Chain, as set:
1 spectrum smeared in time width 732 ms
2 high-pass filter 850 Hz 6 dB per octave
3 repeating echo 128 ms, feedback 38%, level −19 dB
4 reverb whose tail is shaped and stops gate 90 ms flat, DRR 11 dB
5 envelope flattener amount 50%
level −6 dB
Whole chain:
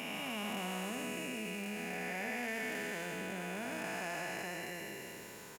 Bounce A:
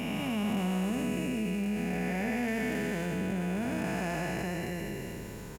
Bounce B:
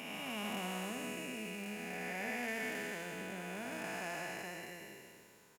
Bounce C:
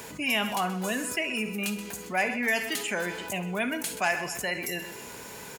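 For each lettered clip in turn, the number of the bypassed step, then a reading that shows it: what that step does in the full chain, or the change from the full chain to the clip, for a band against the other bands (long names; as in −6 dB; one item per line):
2, 125 Hz band +11.5 dB
5, change in momentary loudness spread +5 LU
1, 125 Hz band −2.5 dB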